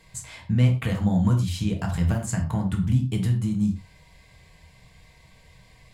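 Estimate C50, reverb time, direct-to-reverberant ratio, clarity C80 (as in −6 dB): 8.5 dB, non-exponential decay, 1.5 dB, 14.0 dB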